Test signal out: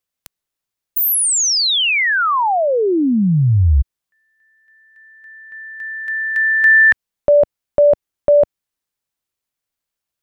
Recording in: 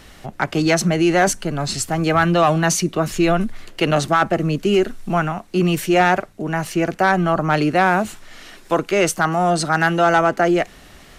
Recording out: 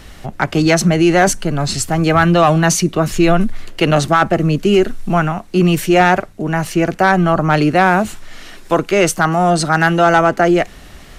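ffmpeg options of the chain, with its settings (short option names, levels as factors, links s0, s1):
-af "lowshelf=f=120:g=6.5,volume=1.5"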